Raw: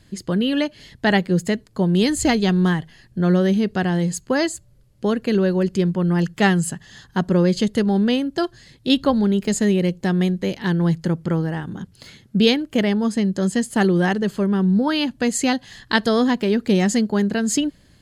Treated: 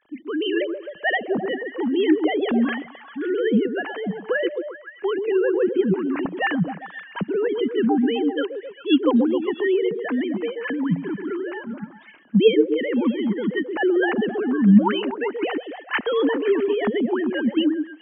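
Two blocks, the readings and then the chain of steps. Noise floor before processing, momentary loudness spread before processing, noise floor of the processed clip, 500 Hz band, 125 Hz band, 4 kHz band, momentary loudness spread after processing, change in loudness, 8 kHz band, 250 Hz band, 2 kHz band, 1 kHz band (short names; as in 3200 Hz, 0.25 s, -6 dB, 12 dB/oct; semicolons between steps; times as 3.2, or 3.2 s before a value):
-54 dBFS, 8 LU, -45 dBFS, +1.0 dB, -9.5 dB, -6.0 dB, 11 LU, -2.0 dB, under -40 dB, -2.5 dB, -1.0 dB, -3.0 dB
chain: sine-wave speech; delay with a stepping band-pass 0.131 s, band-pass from 400 Hz, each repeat 0.7 oct, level -4 dB; gain -3 dB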